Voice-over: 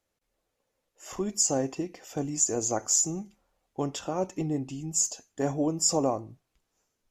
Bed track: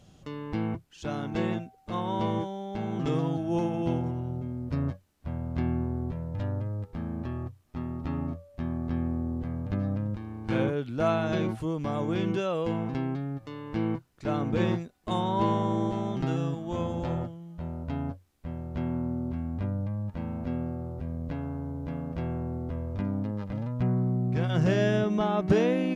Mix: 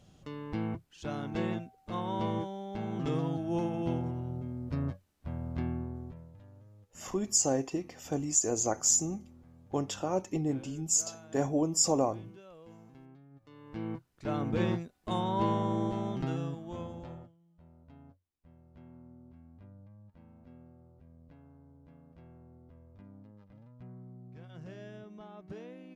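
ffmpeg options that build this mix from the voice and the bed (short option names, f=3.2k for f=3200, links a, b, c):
-filter_complex "[0:a]adelay=5950,volume=-1.5dB[a];[1:a]volume=16dB,afade=t=out:st=5.48:d=0.93:silence=0.105925,afade=t=in:st=13.3:d=1.12:silence=0.1,afade=t=out:st=16.07:d=1.28:silence=0.112202[b];[a][b]amix=inputs=2:normalize=0"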